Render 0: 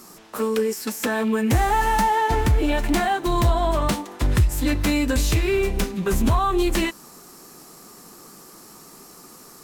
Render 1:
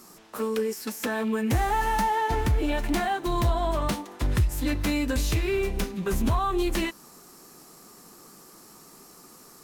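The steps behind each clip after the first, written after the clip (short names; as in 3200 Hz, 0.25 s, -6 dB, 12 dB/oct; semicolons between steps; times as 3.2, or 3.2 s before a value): dynamic EQ 7700 Hz, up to -3 dB, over -48 dBFS, Q 4.6; gain -5 dB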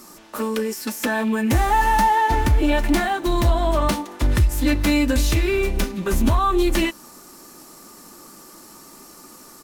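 comb 3.4 ms, depth 36%; gain +5.5 dB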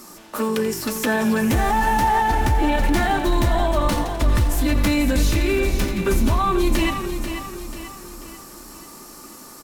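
frequency-shifting echo 85 ms, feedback 62%, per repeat -49 Hz, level -14 dB; limiter -14 dBFS, peak gain reduction 6.5 dB; on a send: feedback echo 0.489 s, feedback 46%, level -8.5 dB; on the sum: gain +2 dB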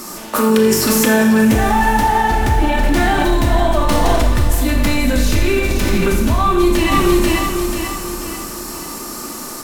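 in parallel at -0.5 dB: negative-ratio compressor -25 dBFS, ratio -0.5; on the sum: Schroeder reverb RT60 0.78 s, combs from 25 ms, DRR 3.5 dB; gain +1.5 dB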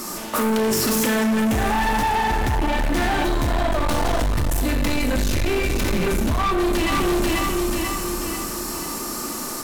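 soft clip -17.5 dBFS, distortion -8 dB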